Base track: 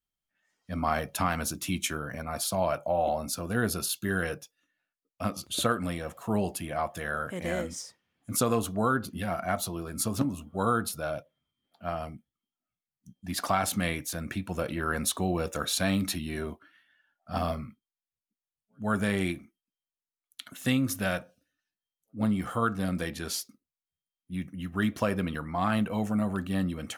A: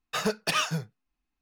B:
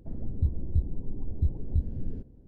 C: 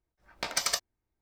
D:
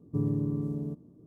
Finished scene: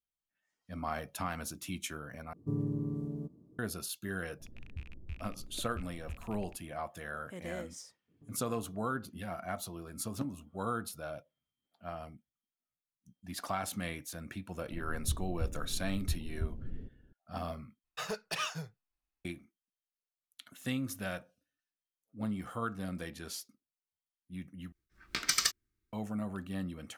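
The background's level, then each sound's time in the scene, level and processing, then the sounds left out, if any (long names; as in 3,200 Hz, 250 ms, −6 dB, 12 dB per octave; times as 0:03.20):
base track −9 dB
0:02.33: overwrite with D −5 dB
0:04.34: mix in B −17.5 dB + loose part that buzzes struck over −32 dBFS, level −23 dBFS
0:08.08: mix in D −17 dB + downward compressor, threshold −39 dBFS
0:14.66: mix in B −8.5 dB
0:17.84: overwrite with A −9 dB + parametric band 240 Hz −9.5 dB 0.57 octaves
0:24.72: overwrite with C + flat-topped bell 690 Hz −15.5 dB 1.2 octaves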